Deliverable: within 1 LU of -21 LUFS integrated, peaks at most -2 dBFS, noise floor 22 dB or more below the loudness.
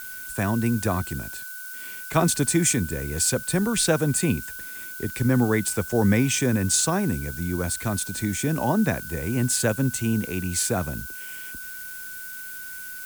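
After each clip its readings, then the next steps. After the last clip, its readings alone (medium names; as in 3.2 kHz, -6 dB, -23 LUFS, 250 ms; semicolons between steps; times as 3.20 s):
steady tone 1.5 kHz; tone level -38 dBFS; noise floor -37 dBFS; noise floor target -47 dBFS; loudness -24.5 LUFS; peak level -8.0 dBFS; loudness target -21.0 LUFS
-> band-stop 1.5 kHz, Q 30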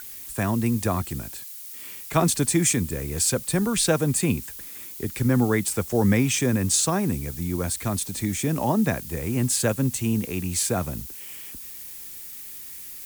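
steady tone not found; noise floor -39 dBFS; noise floor target -46 dBFS
-> noise print and reduce 7 dB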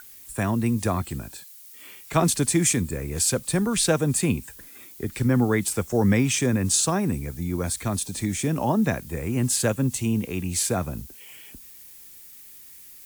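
noise floor -46 dBFS; loudness -24.0 LUFS; peak level -8.0 dBFS; loudness target -21.0 LUFS
-> trim +3 dB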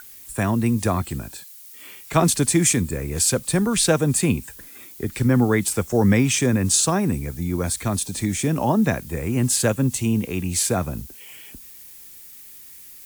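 loudness -21.0 LUFS; peak level -5.0 dBFS; noise floor -43 dBFS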